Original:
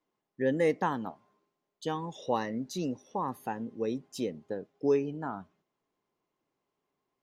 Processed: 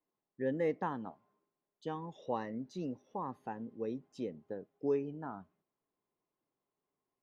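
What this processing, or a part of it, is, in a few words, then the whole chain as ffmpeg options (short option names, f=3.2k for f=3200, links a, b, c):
through cloth: -af "lowpass=7.6k,highshelf=f=3.4k:g=-13,volume=-6dB"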